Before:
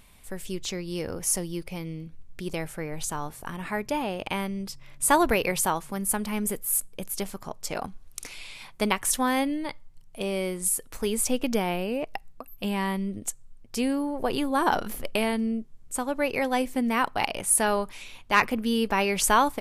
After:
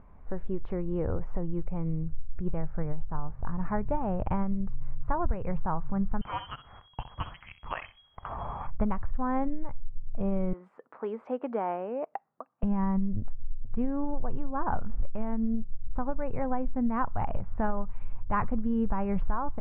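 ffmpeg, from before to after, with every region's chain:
ffmpeg -i in.wav -filter_complex "[0:a]asettb=1/sr,asplit=3[link_01][link_02][link_03];[link_01]atrim=end=6.214[link_04];[link_02]atrim=start=6.21:end=8.67,asetpts=PTS-STARTPTS,afade=type=in:duration=0.004:curve=qsin,afade=type=out:start_time=2.456:duration=0.004:curve=qsin,lowpass=frequency=2800:width_type=q:width=0.5098,lowpass=frequency=2800:width_type=q:width=0.6013,lowpass=frequency=2800:width_type=q:width=0.9,lowpass=frequency=2800:width_type=q:width=2.563,afreqshift=-3300,aecho=1:1:64|128:0.224|0.0381,atrim=end_sample=108486,acontrast=88[link_05];[link_03]atrim=start=8.666[link_06];[link_04][link_05]acrossfade=duration=0.004:curve1=hsin:curve2=qsin[link_07];[link_07][link_06]acrossfade=duration=0.004:curve1=qsin:curve2=hsin,asettb=1/sr,asplit=3[link_08][link_09][link_10];[link_08]atrim=end=10.534[link_11];[link_09]atrim=start=10.53:end=12.63,asetpts=PTS-STARTPTS,afade=type=in:duration=0.004:curve=qsin,afade=type=out:start_time=2.096:duration=0.004:curve=qsin,highpass=frequency=300:width=0.5412,highpass=frequency=300:width=1.3066,lowshelf=frequency=420:gain=-5.5[link_12];[link_10]atrim=start=12.626[link_13];[link_11][link_12]acrossfade=duration=0.004:curve1=hsin:curve2=qsin[link_14];[link_14][link_13]acrossfade=duration=0.004:curve1=qsin:curve2=hsin,lowpass=frequency=1300:width=0.5412,lowpass=frequency=1300:width=1.3066,asubboost=boost=11.5:cutoff=100,acompressor=threshold=-26dB:ratio=5,volume=3dB" out.wav

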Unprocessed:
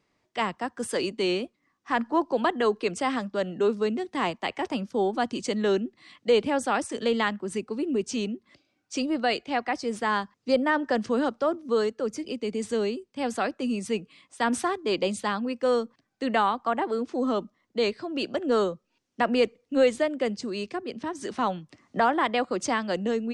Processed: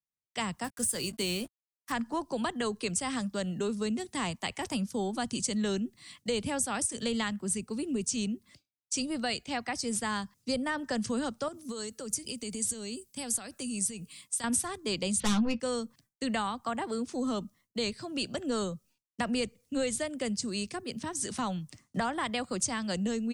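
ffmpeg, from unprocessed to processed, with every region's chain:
ffmpeg -i in.wav -filter_complex "[0:a]asettb=1/sr,asplit=3[link_01][link_02][link_03];[link_01]atrim=end=0.644[link_04];[link_02]atrim=start=0.64:end=1.92,asetpts=PTS-STARTPTS,afade=type=in:duration=0.004:curve=qsin,afade=type=out:start_time=1.276:duration=0.004:curve=qsin,asplit=2[link_05][link_06];[link_06]adelay=18,volume=-13dB[link_07];[link_05][link_07]amix=inputs=2:normalize=0,atrim=end_sample=56448,aeval=exprs='sgn(val(0))*max(abs(val(0))-0.00299,0)':channel_layout=same[link_08];[link_03]atrim=start=1.916[link_09];[link_04][link_08]acrossfade=duration=0.004:curve1=hsin:curve2=qsin[link_10];[link_10][link_09]acrossfade=duration=0.004:curve1=qsin:curve2=hsin,asettb=1/sr,asplit=3[link_11][link_12][link_13];[link_11]atrim=end=11.484[link_14];[link_12]atrim=start=11.48:end=14.44,asetpts=PTS-STARTPTS,afade=type=in:duration=0.004:curve=qsin,afade=type=out:start_time=2.956:duration=0.004:curve=qsin,aemphasis=mode=production:type=cd,acompressor=threshold=-32dB:ratio=6:attack=3.2:release=140:knee=1:detection=peak[link_15];[link_13]atrim=start=14.436[link_16];[link_14][link_15]acrossfade=duration=0.004:curve1=hsin:curve2=qsin[link_17];[link_17][link_16]acrossfade=duration=0.004:curve1=qsin:curve2=hsin,asettb=1/sr,asplit=3[link_18][link_19][link_20];[link_18]atrim=end=15.204[link_21];[link_19]atrim=start=15.2:end=15.6,asetpts=PTS-STARTPTS,afade=type=in:duration=0.004:curve=qsin,afade=type=out:start_time=0.396:duration=0.004:curve=qsin,lowpass=frequency=3900:width=0.5412,lowpass=frequency=3900:width=1.3066,aeval=exprs='0.133*sin(PI/2*2*val(0)/0.133)':channel_layout=same,asplit=2[link_22][link_23];[link_23]adelay=14,volume=-8dB[link_24];[link_22][link_24]amix=inputs=2:normalize=0,atrim=end_sample=17640[link_25];[link_20]atrim=start=15.596[link_26];[link_21][link_25]acrossfade=duration=0.004:curve1=hsin:curve2=qsin[link_27];[link_27][link_26]acrossfade=duration=0.004:curve1=qsin:curve2=hsin,agate=range=-33dB:threshold=-51dB:ratio=3:detection=peak,firequalizer=gain_entry='entry(120,0);entry(320,-14);entry(9900,12)':delay=0.05:min_phase=1,acrossover=split=160[link_28][link_29];[link_29]acompressor=threshold=-38dB:ratio=2.5[link_30];[link_28][link_30]amix=inputs=2:normalize=0,volume=7.5dB" out.wav

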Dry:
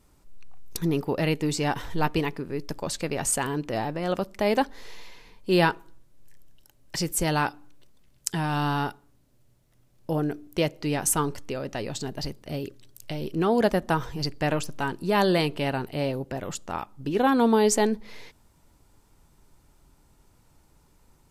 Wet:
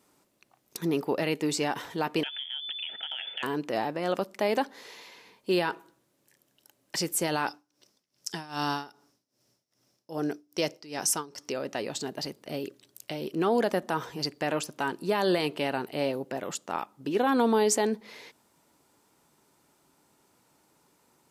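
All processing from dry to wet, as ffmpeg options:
ffmpeg -i in.wav -filter_complex "[0:a]asettb=1/sr,asplit=3[link_01][link_02][link_03];[link_01]atrim=end=2.234[link_04];[link_02]atrim=start=2.23:end=3.43,asetpts=PTS-STARTPTS,afade=type=in:duration=0.004:curve=qsin,afade=type=out:start_time=1.196:duration=0.004:curve=qsin,lowpass=frequency=3000:width_type=q:width=0.5098,lowpass=frequency=3000:width_type=q:width=0.6013,lowpass=frequency=3000:width_type=q:width=0.9,lowpass=frequency=3000:width_type=q:width=2.563,afreqshift=-3500,acompressor=threshold=-31dB:ratio=6:attack=3.2:release=140:knee=1:detection=peak,asuperstop=centerf=1100:order=12:qfactor=3.9[link_05];[link_03]atrim=start=3.426[link_06];[link_04][link_05]acrossfade=duration=0.004:curve1=hsin:curve2=qsin[link_07];[link_07][link_06]acrossfade=duration=0.004:curve1=qsin:curve2=hsin,asettb=1/sr,asplit=3[link_08][link_09][link_10];[link_08]atrim=end=7.474[link_11];[link_09]atrim=start=7.47:end=11.52,asetpts=PTS-STARTPTS,afade=type=in:duration=0.004:curve=qsin,afade=type=out:start_time=4.046:duration=0.004:curve=qsin,equalizer=frequency=5400:width=3:gain=15,tremolo=f=2.5:d=0.88[link_12];[link_10]atrim=start=11.516[link_13];[link_11][link_12]acrossfade=duration=0.004:curve1=hsin:curve2=qsin[link_14];[link_14][link_13]acrossfade=duration=0.004:curve1=qsin:curve2=hsin,highpass=240,alimiter=limit=-15.5dB:level=0:latency=1:release=46" out.wav

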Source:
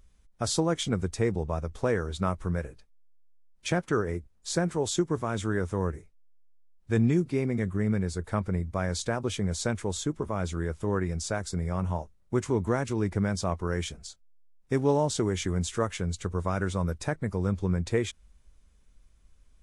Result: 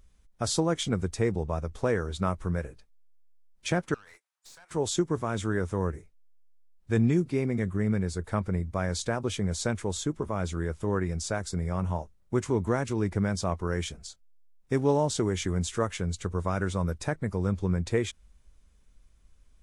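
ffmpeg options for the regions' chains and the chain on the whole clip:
ffmpeg -i in.wav -filter_complex "[0:a]asettb=1/sr,asplit=3[link_01][link_02][link_03];[link_01]atrim=end=3.944[link_04];[link_02]atrim=start=3.94:end=4.71,asetpts=PTS-STARTPTS,afade=type=in:duration=0.004:curve=qsin,afade=type=out:start_time=0.766:duration=0.004:curve=qsin,highpass=frequency=870:width=0.5412,highpass=frequency=870:width=1.3066,acompressor=threshold=-42dB:ratio=12:attack=3.2:release=140:knee=1:detection=peak,aeval=exprs='(tanh(224*val(0)+0.65)-tanh(0.65))/224':channel_layout=same[link_05];[link_03]atrim=start=4.706[link_06];[link_04][link_05]acrossfade=duration=0.004:curve1=hsin:curve2=qsin[link_07];[link_07][link_06]acrossfade=duration=0.004:curve1=qsin:curve2=hsin" out.wav

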